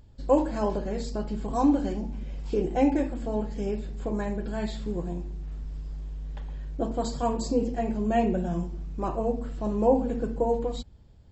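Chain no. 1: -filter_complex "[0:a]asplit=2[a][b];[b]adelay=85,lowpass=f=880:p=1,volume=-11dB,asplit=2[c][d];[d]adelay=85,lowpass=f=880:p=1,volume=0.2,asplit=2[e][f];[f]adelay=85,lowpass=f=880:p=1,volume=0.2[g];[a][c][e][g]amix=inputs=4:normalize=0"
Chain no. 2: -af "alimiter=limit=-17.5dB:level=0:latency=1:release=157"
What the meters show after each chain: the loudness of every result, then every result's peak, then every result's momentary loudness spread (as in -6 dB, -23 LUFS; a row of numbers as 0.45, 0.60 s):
-28.5, -31.0 LUFS; -9.5, -17.5 dBFS; 15, 11 LU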